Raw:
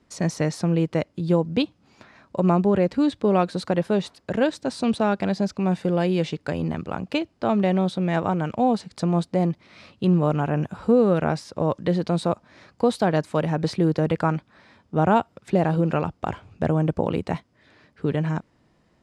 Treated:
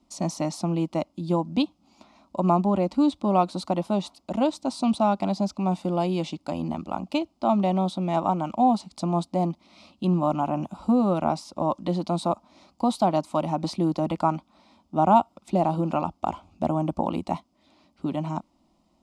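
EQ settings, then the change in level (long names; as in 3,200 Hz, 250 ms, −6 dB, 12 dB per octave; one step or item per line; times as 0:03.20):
phaser with its sweep stopped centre 450 Hz, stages 6
dynamic equaliser 1,100 Hz, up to +5 dB, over −40 dBFS, Q 1.1
0.0 dB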